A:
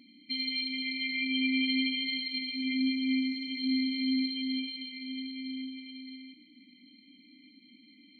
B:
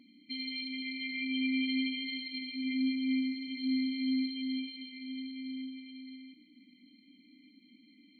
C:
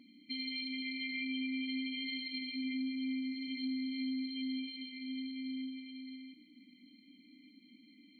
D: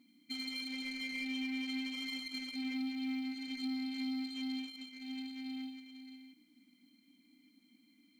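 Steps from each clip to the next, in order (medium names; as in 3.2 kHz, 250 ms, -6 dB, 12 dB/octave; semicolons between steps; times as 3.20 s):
treble shelf 2.3 kHz -7 dB; trim -1.5 dB
compression, threshold -35 dBFS, peak gain reduction 7.5 dB
companding laws mixed up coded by A; trim +2 dB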